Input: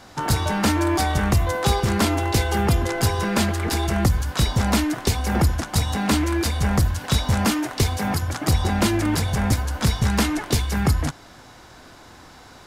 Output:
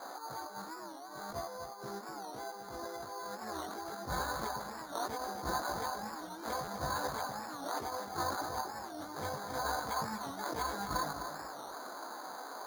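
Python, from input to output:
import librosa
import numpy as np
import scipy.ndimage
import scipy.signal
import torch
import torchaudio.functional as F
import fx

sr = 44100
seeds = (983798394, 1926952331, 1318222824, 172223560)

p1 = scipy.signal.sosfilt(scipy.signal.butter(2, 720.0, 'highpass', fs=sr, output='sos'), x)
p2 = fx.spec_gate(p1, sr, threshold_db=-25, keep='strong')
p3 = scipy.signal.sosfilt(scipy.signal.butter(4, 1500.0, 'lowpass', fs=sr, output='sos'), p2)
p4 = fx.tilt_eq(p3, sr, slope=-3.0)
p5 = fx.over_compress(p4, sr, threshold_db=-40.0, ratio=-1.0)
p6 = fx.chorus_voices(p5, sr, voices=6, hz=0.38, base_ms=18, depth_ms=4.1, mix_pct=45)
p7 = p6 + fx.echo_feedback(p6, sr, ms=255, feedback_pct=32, wet_db=-9.0, dry=0)
p8 = np.repeat(p7[::8], 8)[:len(p7)]
p9 = fx.buffer_glitch(p8, sr, at_s=(6.64,), block=512, repeats=2)
p10 = fx.record_warp(p9, sr, rpm=45.0, depth_cents=160.0)
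y = p10 * librosa.db_to_amplitude(1.5)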